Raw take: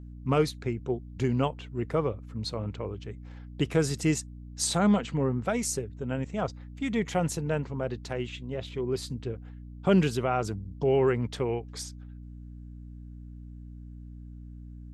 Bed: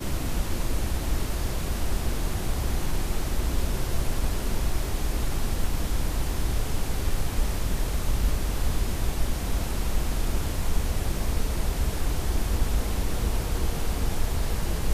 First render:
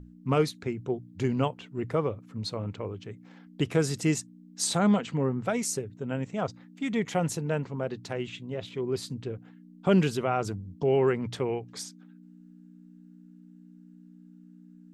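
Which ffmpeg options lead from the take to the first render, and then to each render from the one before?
-af "bandreject=f=60:t=h:w=6,bandreject=f=120:t=h:w=6"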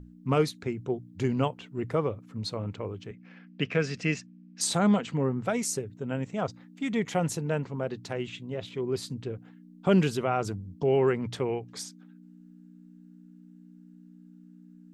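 -filter_complex "[0:a]asettb=1/sr,asplit=3[a][b][c];[a]atrim=end=3.114[d];[b]atrim=start=3.11:end=4.61,asetpts=PTS-STARTPTS,afade=t=in:d=0.004:c=qsin,afade=t=out:st=1.496:d=0.004:c=qsin,highpass=160,equalizer=f=190:t=q:w=4:g=4,equalizer=f=340:t=q:w=4:g=-8,equalizer=f=870:t=q:w=4:g=-8,equalizer=f=1.7k:t=q:w=4:g=5,equalizer=f=2.5k:t=q:w=4:g=9,equalizer=f=3.8k:t=q:w=4:g=-6,lowpass=f=5.2k:w=0.5412,lowpass=f=5.2k:w=1.3066[e];[c]atrim=start=4.606[f];[d][e]acrossfade=d=0.004:c1=hsin:c2=qsin[g];[g][f]acrossfade=d=0.004:c1=qsin:c2=hsin"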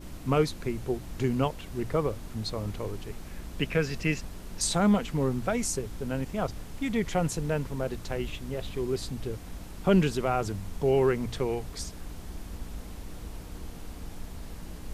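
-filter_complex "[1:a]volume=-14.5dB[a];[0:a][a]amix=inputs=2:normalize=0"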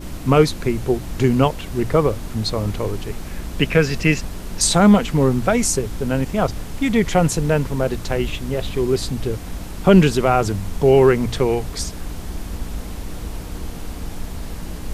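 -af "volume=11dB,alimiter=limit=-1dB:level=0:latency=1"

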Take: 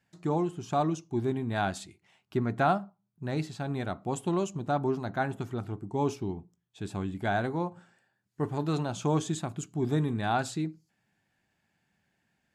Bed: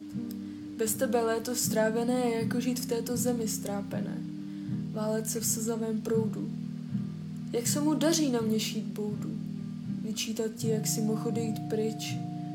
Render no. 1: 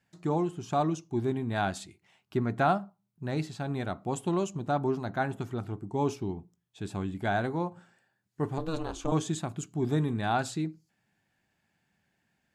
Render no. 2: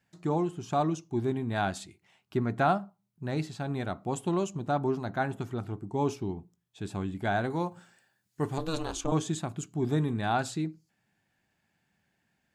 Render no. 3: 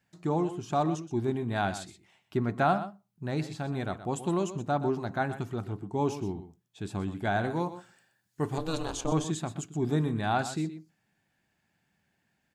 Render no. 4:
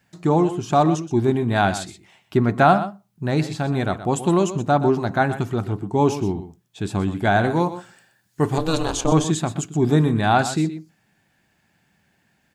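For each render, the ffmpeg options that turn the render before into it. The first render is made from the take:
-filter_complex "[0:a]asettb=1/sr,asplit=3[a][b][c];[a]atrim=end=8.584[d];[b]atrim=start=8.58:end=9.12,asetpts=PTS-STARTPTS,afade=t=in:d=0.004:c=qsin,afade=t=out:st=0.536:d=0.004:c=qsin,aeval=exprs='val(0)*sin(2*PI*160*n/s)':c=same[e];[c]atrim=start=9.116[f];[d][e]acrossfade=d=0.004:c1=hsin:c2=qsin[g];[g][f]acrossfade=d=0.004:c1=qsin:c2=hsin"
-filter_complex "[0:a]asettb=1/sr,asplit=3[a][b][c];[a]atrim=end=7.504[d];[b]atrim=start=7.5:end=9.01,asetpts=PTS-STARTPTS,afade=t=in:d=0.004:c=qsin,afade=t=out:st=1.506:d=0.004:c=qsin,highshelf=f=2.7k:g=9.5[e];[c]atrim=start=9.006[f];[d][e]acrossfade=d=0.004:c1=hsin:c2=qsin[g];[g][f]acrossfade=d=0.004:c1=qsin:c2=hsin"
-af "aecho=1:1:124:0.237"
-af "volume=10.5dB"

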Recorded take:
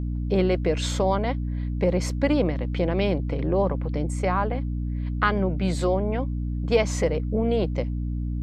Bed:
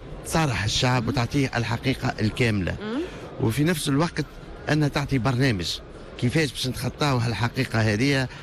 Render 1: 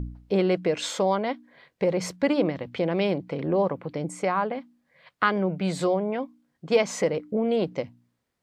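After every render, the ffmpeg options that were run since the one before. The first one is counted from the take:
-af "bandreject=f=60:t=h:w=4,bandreject=f=120:t=h:w=4,bandreject=f=180:t=h:w=4,bandreject=f=240:t=h:w=4,bandreject=f=300:t=h:w=4"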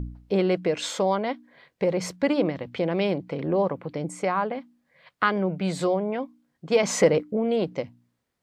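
-filter_complex "[0:a]asettb=1/sr,asplit=3[a][b][c];[a]atrim=end=6.834[d];[b]atrim=start=6.83:end=7.23,asetpts=PTS-STARTPTS,afade=t=in:d=0.004:c=qsin,afade=t=out:st=0.396:d=0.004:c=qsin,acontrast=58[e];[c]atrim=start=7.226[f];[d][e]acrossfade=d=0.004:c1=hsin:c2=qsin[g];[g][f]acrossfade=d=0.004:c1=qsin:c2=hsin"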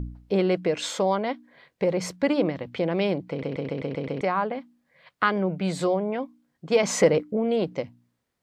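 -filter_complex "[0:a]asplit=8[a][b][c][d][e][f][g][h];[a]atrim=end=3.432[i];[b]atrim=start=3.298:end=3.432[j];[c]atrim=start=3.298:end=3.432[k];[d]atrim=start=3.298:end=3.432[l];[e]atrim=start=3.298:end=3.432[m];[f]atrim=start=3.298:end=3.432[n];[g]atrim=start=3.298:end=3.432[o];[h]atrim=start=4.208[p];[i][j]acrossfade=d=0.004:c1=hsin:c2=hsin[q];[q][k]acrossfade=d=0.004:c1=hsin:c2=hsin[r];[r][l]acrossfade=d=0.004:c1=hsin:c2=hsin[s];[s][m]acrossfade=d=0.004:c1=hsin:c2=hsin[t];[t][n]acrossfade=d=0.004:c1=hsin:c2=hsin[u];[u][o]acrossfade=d=0.004:c1=hsin:c2=hsin[v];[v][p]acrossfade=d=0.004:c1=hsin:c2=hsin"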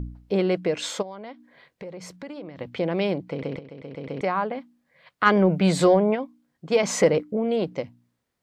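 -filter_complex "[0:a]asplit=3[a][b][c];[a]afade=t=out:st=1.01:d=0.02[d];[b]acompressor=threshold=-39dB:ratio=3:attack=3.2:release=140:knee=1:detection=peak,afade=t=in:st=1.01:d=0.02,afade=t=out:st=2.57:d=0.02[e];[c]afade=t=in:st=2.57:d=0.02[f];[d][e][f]amix=inputs=3:normalize=0,asplit=3[g][h][i];[g]afade=t=out:st=5.25:d=0.02[j];[h]acontrast=80,afade=t=in:st=5.25:d=0.02,afade=t=out:st=6.14:d=0.02[k];[i]afade=t=in:st=6.14:d=0.02[l];[j][k][l]amix=inputs=3:normalize=0,asplit=2[m][n];[m]atrim=end=3.59,asetpts=PTS-STARTPTS,afade=t=out:st=3.586:d=0.004:c=hsin:silence=0.223872[o];[n]atrim=start=3.59,asetpts=PTS-STARTPTS,afade=t=in:d=0.64:c=qua:silence=0.223872[p];[o][p]concat=n=2:v=0:a=1"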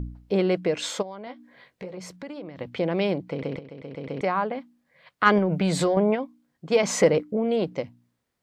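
-filter_complex "[0:a]asettb=1/sr,asplit=3[a][b][c];[a]atrim=end=1.254[d];[b]atrim=start=1.25:end=2.02,asetpts=PTS-STARTPTS,afade=t=in:d=0.004:c=qsin,afade=t=out:st=0.766:d=0.004:c=qsin,asplit=2[e][f];[f]adelay=16,volume=-5.5dB[g];[e][g]amix=inputs=2:normalize=0,atrim=end_sample=33957[h];[c]atrim=start=2.016[i];[d][h]acrossfade=d=0.004:c1=hsin:c2=qsin[j];[j][i]acrossfade=d=0.004:c1=qsin:c2=hsin,asettb=1/sr,asplit=3[k][l][m];[k]atrim=end=5.384[n];[l]atrim=start=5.38:end=5.97,asetpts=PTS-STARTPTS,afade=t=in:d=0.004:c=qsin,afade=t=out:st=0.586:d=0.004:c=qsin,acompressor=threshold=-18dB:ratio=6:attack=3.2:release=140:knee=1:detection=peak[o];[m]atrim=start=5.966[p];[n][o]acrossfade=d=0.004:c1=hsin:c2=qsin[q];[q][p]acrossfade=d=0.004:c1=qsin:c2=hsin"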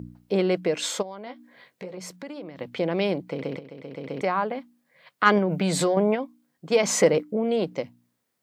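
-af "highpass=140,highshelf=f=8k:g=9"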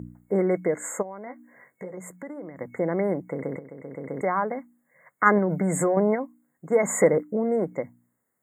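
-af "afftfilt=real='re*(1-between(b*sr/4096,2200,6600))':imag='im*(1-between(b*sr/4096,2200,6600))':win_size=4096:overlap=0.75"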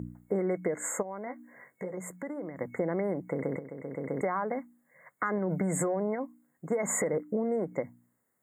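-af "alimiter=limit=-15.5dB:level=0:latency=1:release=97,acompressor=threshold=-26dB:ratio=6"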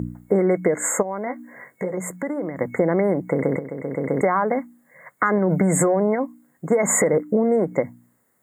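-af "volume=11dB"

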